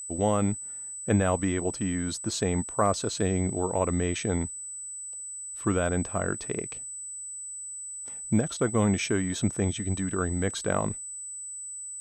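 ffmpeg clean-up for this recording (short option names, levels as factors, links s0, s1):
-af "bandreject=f=8000:w=30"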